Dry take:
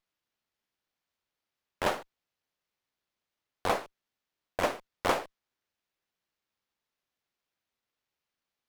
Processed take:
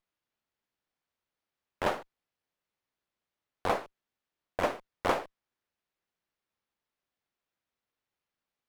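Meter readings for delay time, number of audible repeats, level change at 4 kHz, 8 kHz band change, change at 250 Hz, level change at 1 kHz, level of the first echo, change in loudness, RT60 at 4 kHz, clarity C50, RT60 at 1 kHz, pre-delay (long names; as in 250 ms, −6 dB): no echo audible, no echo audible, −3.5 dB, −6.0 dB, 0.0 dB, −0.5 dB, no echo audible, −1.0 dB, no reverb audible, no reverb audible, no reverb audible, no reverb audible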